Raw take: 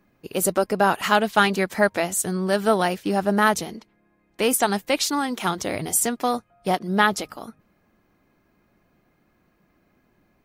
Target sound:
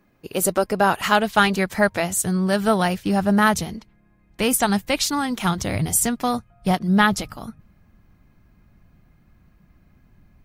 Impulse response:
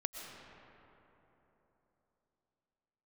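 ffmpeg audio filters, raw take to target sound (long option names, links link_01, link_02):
-af "asubboost=boost=7:cutoff=140,volume=1.5dB"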